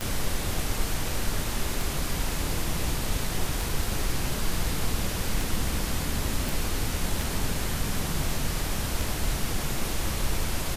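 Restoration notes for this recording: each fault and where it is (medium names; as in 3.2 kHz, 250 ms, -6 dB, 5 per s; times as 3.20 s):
tick 33 1/3 rpm -14 dBFS
6.49 s: pop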